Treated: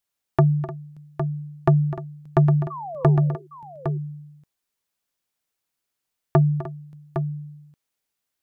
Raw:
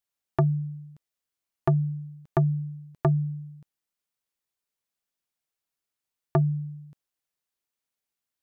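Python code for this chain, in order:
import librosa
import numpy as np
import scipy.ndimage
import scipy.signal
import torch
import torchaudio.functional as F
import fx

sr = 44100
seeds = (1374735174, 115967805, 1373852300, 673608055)

y = fx.spec_paint(x, sr, seeds[0], shape='fall', start_s=2.7, length_s=0.47, low_hz=350.0, high_hz=1200.0, level_db=-38.0)
y = fx.echo_multitap(y, sr, ms=(253, 302, 809), db=(-14.5, -15.5, -8.5))
y = y * librosa.db_to_amplitude(5.0)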